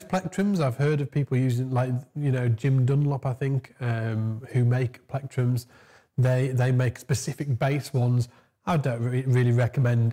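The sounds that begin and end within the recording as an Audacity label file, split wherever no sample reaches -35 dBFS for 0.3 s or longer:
6.180000	8.250000	sound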